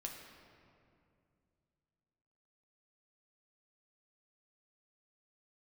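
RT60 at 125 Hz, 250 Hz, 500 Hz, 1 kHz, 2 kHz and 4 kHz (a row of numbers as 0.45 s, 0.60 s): 3.4 s, 3.0 s, 2.6 s, 2.2 s, 2.0 s, 1.4 s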